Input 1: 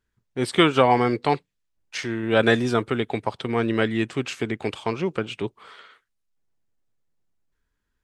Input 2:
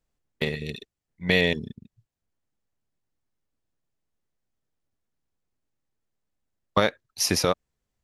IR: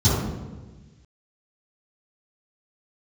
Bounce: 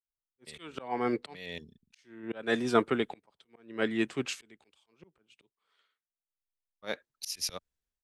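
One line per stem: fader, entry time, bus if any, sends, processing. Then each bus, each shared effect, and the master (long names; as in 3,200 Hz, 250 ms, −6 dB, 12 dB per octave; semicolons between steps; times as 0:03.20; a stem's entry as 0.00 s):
−7.5 dB, 0.00 s, no send, high-shelf EQ 6,000 Hz +3 dB
0.0 dB, 0.05 s, no send, automatic ducking −12 dB, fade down 0.70 s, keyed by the first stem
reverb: not used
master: parametric band 110 Hz −11 dB 0.58 octaves; volume swells 364 ms; multiband upward and downward expander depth 100%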